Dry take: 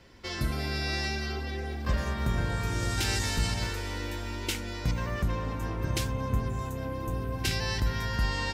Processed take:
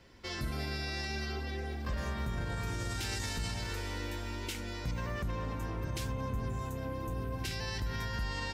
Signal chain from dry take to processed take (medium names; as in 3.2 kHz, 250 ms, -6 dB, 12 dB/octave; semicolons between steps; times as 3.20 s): peak limiter -23.5 dBFS, peak gain reduction 6 dB; trim -3.5 dB